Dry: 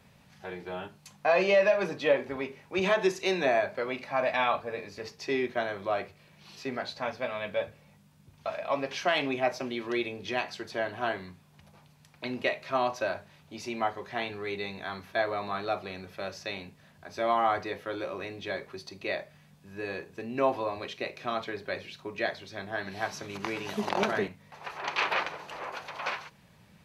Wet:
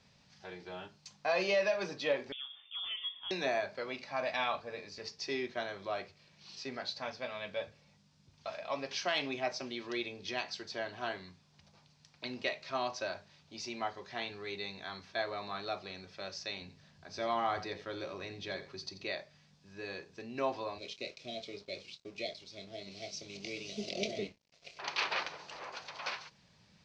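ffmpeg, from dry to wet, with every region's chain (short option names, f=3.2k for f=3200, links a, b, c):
-filter_complex "[0:a]asettb=1/sr,asplit=3[a][b][c];[a]atrim=end=2.324[d];[b]atrim=start=2.32:end=3.31,asetpts=PTS-STARTPTS,afade=t=in:d=0.004:c=qsin,afade=t=out:st=0.986:d=0.004:c=qsin,equalizer=f=2.1k:t=o:w=0.43:g=-10.5,acompressor=threshold=-42dB:ratio=2:attack=3.2:release=140:knee=1:detection=peak,lowpass=f=3.1k:t=q:w=0.5098,lowpass=f=3.1k:t=q:w=0.6013,lowpass=f=3.1k:t=q:w=0.9,lowpass=f=3.1k:t=q:w=2.563,afreqshift=-3700[e];[c]atrim=start=3.306[f];[d][e]acrossfade=d=0.004:c1=hsin:c2=qsin[g];[g][f]acrossfade=d=0.004:c1=qsin:c2=hsin,asettb=1/sr,asplit=3[h][i][j];[h]atrim=end=16.614[k];[i]atrim=start=16.61:end=19.09,asetpts=PTS-STARTPTS,afade=t=in:d=0.004:c=qsin,afade=t=out:st=2.476:d=0.004:c=qsin,lowshelf=f=220:g=6,aecho=1:1:86:0.2,atrim=end_sample=109368[l];[j]atrim=start=19.086[m];[k][l]acrossfade=d=0.004:c1=hsin:c2=qsin[n];[n][m]acrossfade=d=0.004:c1=qsin:c2=hsin,asettb=1/sr,asplit=3[o][p][q];[o]atrim=end=20.784[r];[p]atrim=start=20.78:end=24.79,asetpts=PTS-STARTPTS,afade=t=in:d=0.004:c=qsin,afade=t=out:st=4.006:d=0.004:c=qsin,asuperstop=centerf=1200:order=20:qfactor=0.89,aeval=exprs='sgn(val(0))*max(abs(val(0))-0.00237,0)':c=same,asplit=2[s][t];[t]adelay=25,volume=-11dB[u];[s][u]amix=inputs=2:normalize=0,atrim=end_sample=176841[v];[q]atrim=start=24.786[w];[r][v]acrossfade=d=0.004:c1=hsin:c2=qsin[x];[x][w]acrossfade=d=0.004:c1=qsin:c2=hsin,lowpass=f=7.3k:w=0.5412,lowpass=f=7.3k:w=1.3066,equalizer=f=5k:t=o:w=1.1:g=11.5,volume=-8dB"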